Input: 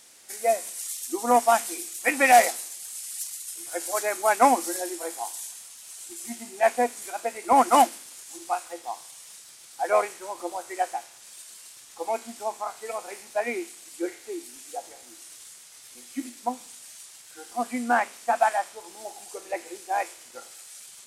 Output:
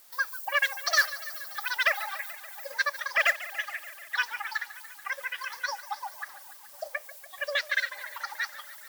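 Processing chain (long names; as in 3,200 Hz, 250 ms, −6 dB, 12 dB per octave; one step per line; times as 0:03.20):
in parallel at −1 dB: downward compressor, threshold −32 dBFS, peak gain reduction 19.5 dB
on the sum: change of speed 2.37×
feedback echo with a swinging delay time 144 ms, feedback 74%, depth 105 cents, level −16 dB
level −6.5 dB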